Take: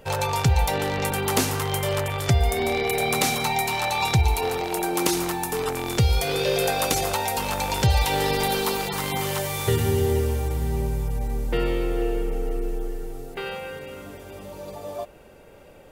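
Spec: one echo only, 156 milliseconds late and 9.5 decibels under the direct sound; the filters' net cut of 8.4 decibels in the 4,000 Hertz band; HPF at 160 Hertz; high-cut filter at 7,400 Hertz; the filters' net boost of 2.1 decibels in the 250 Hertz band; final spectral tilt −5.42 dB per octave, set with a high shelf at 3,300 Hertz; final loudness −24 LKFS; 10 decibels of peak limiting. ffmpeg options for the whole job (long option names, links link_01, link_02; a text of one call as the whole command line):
ffmpeg -i in.wav -af "highpass=160,lowpass=7400,equalizer=frequency=250:width_type=o:gain=4.5,highshelf=frequency=3300:gain=-4,equalizer=frequency=4000:width_type=o:gain=-7.5,alimiter=limit=-18.5dB:level=0:latency=1,aecho=1:1:156:0.335,volume=4dB" out.wav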